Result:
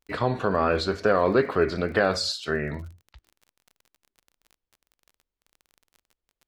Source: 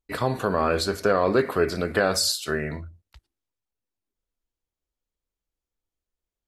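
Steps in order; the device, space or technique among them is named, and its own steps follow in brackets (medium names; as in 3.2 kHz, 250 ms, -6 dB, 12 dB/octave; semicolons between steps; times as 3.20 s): lo-fi chain (low-pass 4.4 kHz 12 dB/octave; wow and flutter; crackle 28 per s -40 dBFS)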